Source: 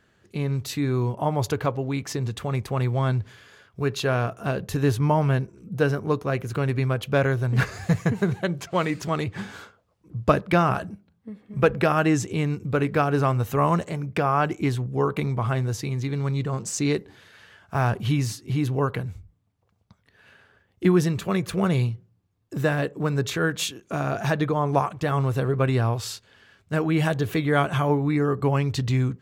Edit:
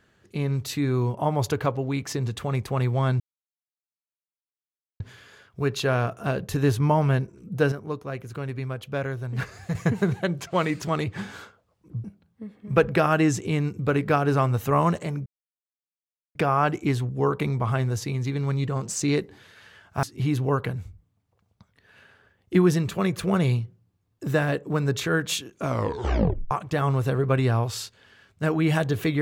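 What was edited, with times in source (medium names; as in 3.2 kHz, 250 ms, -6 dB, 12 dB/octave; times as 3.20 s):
3.20 s: insert silence 1.80 s
5.92–7.95 s: gain -7.5 dB
10.24–10.90 s: delete
14.12 s: insert silence 1.09 s
17.80–18.33 s: delete
23.92 s: tape stop 0.89 s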